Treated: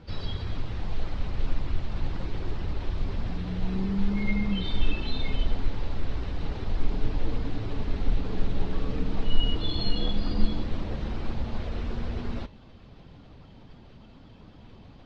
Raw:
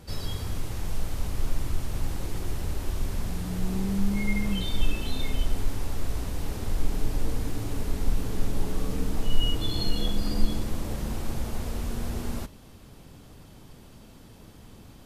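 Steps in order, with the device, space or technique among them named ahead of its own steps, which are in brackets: dynamic bell 4 kHz, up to +5 dB, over -57 dBFS, Q 7.8; clip after many re-uploads (low-pass 4.2 kHz 24 dB/octave; coarse spectral quantiser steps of 15 dB)

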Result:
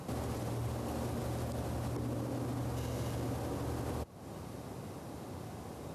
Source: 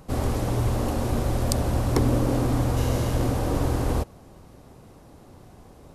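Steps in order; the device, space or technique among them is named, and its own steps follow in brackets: podcast mastering chain (high-pass 78 Hz 24 dB/octave; de-esser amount 65%; compression 4:1, threshold -40 dBFS, peak gain reduction 18 dB; peak limiter -33.5 dBFS, peak gain reduction 5.5 dB; trim +5 dB; MP3 96 kbps 32 kHz)

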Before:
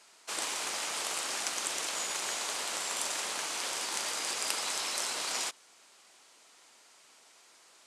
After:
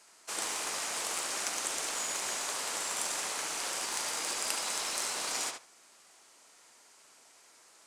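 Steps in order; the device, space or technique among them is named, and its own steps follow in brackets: bass shelf 110 Hz +5 dB; filtered feedback delay 73 ms, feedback 16%, low-pass 4.2 kHz, level -4 dB; exciter from parts (in parallel at -5 dB: high-pass 2.4 kHz 12 dB/octave + saturation -31.5 dBFS, distortion -12 dB + high-pass 3.5 kHz 12 dB/octave); on the sum: trim -1.5 dB

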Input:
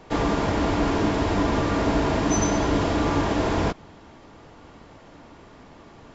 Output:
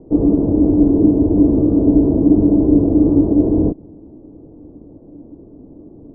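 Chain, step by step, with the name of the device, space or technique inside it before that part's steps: under water (low-pass 510 Hz 24 dB/octave; peaking EQ 300 Hz +9 dB 0.47 oct); trim +6 dB

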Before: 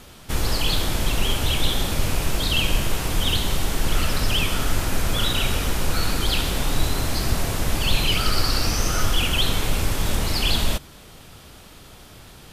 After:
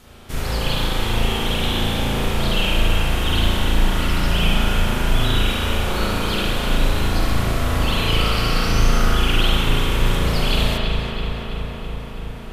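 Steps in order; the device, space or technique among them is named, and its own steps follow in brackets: dub delay into a spring reverb (filtered feedback delay 329 ms, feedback 78%, low-pass 3.8 kHz, level -6 dB; spring tank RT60 1.5 s, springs 36 ms, chirp 35 ms, DRR -6.5 dB); trim -5 dB

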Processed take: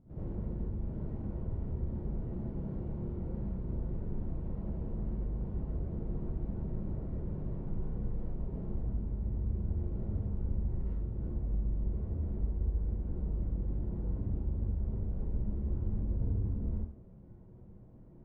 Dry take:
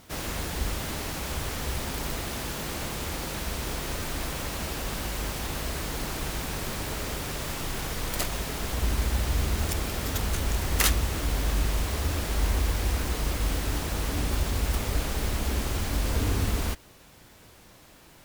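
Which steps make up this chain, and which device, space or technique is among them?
television next door (compression, threshold -33 dBFS, peak gain reduction 14.5 dB; low-pass 280 Hz 12 dB/octave; reverberation RT60 0.65 s, pre-delay 56 ms, DRR -9.5 dB); trim -5.5 dB

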